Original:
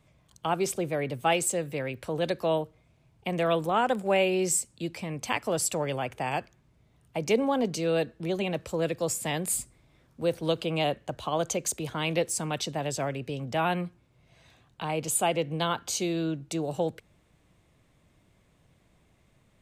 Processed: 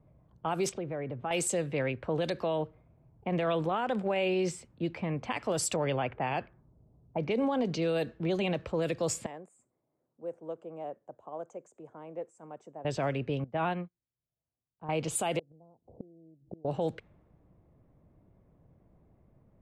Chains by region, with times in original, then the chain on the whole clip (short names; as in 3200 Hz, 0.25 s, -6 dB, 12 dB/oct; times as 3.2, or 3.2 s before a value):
0.69–1.31 compressor 3:1, threshold -36 dBFS + running mean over 4 samples
2.32–4.75 compressor 3:1, threshold -26 dBFS + bell 7200 Hz -3.5 dB 0.94 oct
5.76–7.82 air absorption 72 m + low-pass opened by the level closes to 800 Hz, open at -22.5 dBFS
9.26–12.85 EQ curve 110 Hz 0 dB, 4300 Hz -23 dB, 7400 Hz +14 dB + compressor 4:1, threshold -25 dBFS + BPF 520–5200 Hz
13.44–14.89 LPF 2000 Hz 6 dB/oct + upward expander 2.5:1, over -49 dBFS
15.39–16.65 steep low-pass 760 Hz + flipped gate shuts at -30 dBFS, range -29 dB
whole clip: low-pass opened by the level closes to 740 Hz, open at -22 dBFS; limiter -23.5 dBFS; gain +2 dB